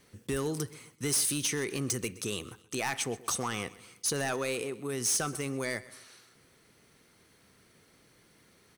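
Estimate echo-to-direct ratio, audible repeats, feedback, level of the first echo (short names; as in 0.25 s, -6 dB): -18.5 dB, 3, 41%, -19.5 dB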